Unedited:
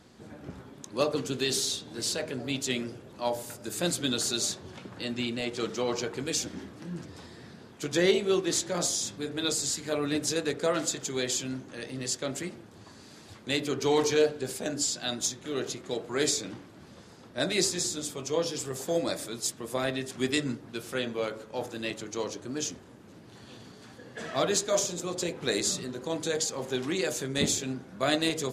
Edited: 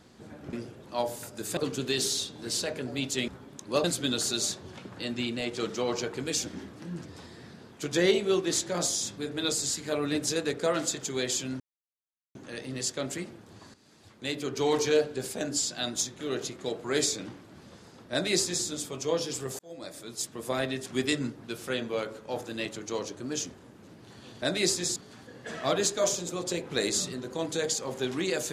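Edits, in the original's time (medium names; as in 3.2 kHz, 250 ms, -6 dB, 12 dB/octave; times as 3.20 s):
0.53–1.09 s: swap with 2.80–3.84 s
11.60 s: insert silence 0.75 s
12.99–14.58 s: fade in equal-power, from -13 dB
17.37–17.91 s: copy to 23.67 s
18.84–19.69 s: fade in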